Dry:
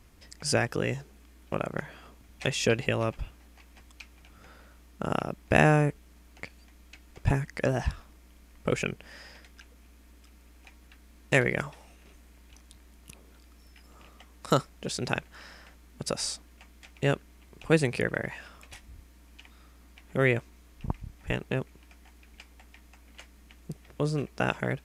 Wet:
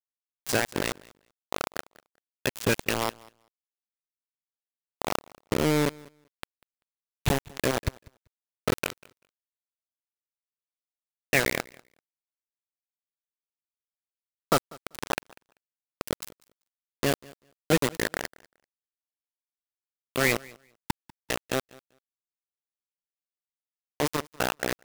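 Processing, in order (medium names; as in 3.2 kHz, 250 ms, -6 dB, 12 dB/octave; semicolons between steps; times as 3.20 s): coarse spectral quantiser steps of 30 dB; 5.16–5.86 s: Chebyshev low-pass 550 Hz, order 5; bit crusher 4-bit; feedback delay 194 ms, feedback 16%, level -23.5 dB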